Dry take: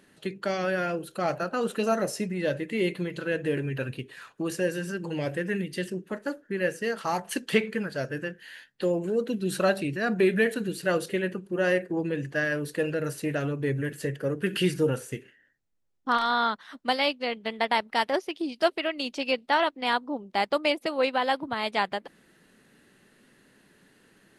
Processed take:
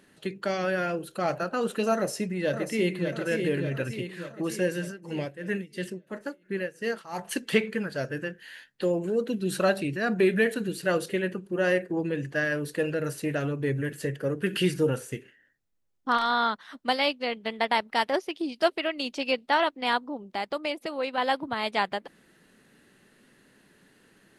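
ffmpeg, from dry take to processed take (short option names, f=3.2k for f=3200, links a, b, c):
-filter_complex "[0:a]asplit=2[a][b];[b]afade=t=in:st=1.94:d=0.01,afade=t=out:st=3.09:d=0.01,aecho=0:1:590|1180|1770|2360|2950|3540|4130|4720:0.501187|0.300712|0.180427|0.108256|0.0649539|0.0389723|0.0233834|0.01403[c];[a][c]amix=inputs=2:normalize=0,asplit=3[d][e][f];[d]afade=t=out:st=4.87:d=0.02[g];[e]tremolo=f=2.9:d=0.85,afade=t=in:st=4.87:d=0.02,afade=t=out:st=7.18:d=0.02[h];[f]afade=t=in:st=7.18:d=0.02[i];[g][h][i]amix=inputs=3:normalize=0,asettb=1/sr,asplit=3[j][k][l];[j]atrim=end=20.004[m];[k]atrim=start=20:end=21.18,asetpts=PTS-STARTPTS,afade=t=in:d=0.004:c=qsin,afade=t=out:st=1.176:d=0.004:c=qsin,acompressor=threshold=-35dB:ratio=1.5:attack=3.2:release=140:knee=1:detection=peak[n];[l]atrim=start=21.176[o];[m][n]acrossfade=d=0.004:c1=hsin:c2=qsin[p];[p][o]acrossfade=d=0.004:c1=qsin:c2=hsin"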